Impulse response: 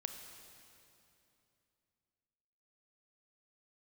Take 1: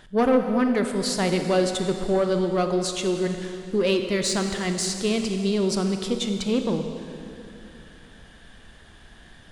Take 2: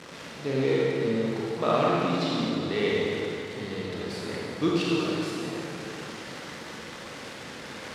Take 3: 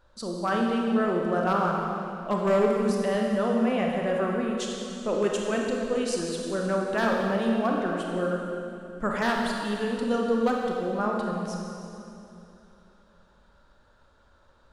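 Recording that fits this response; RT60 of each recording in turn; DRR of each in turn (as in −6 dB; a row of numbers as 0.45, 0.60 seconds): 1; 2.8, 2.8, 2.8 seconds; 5.5, −6.0, −1.0 decibels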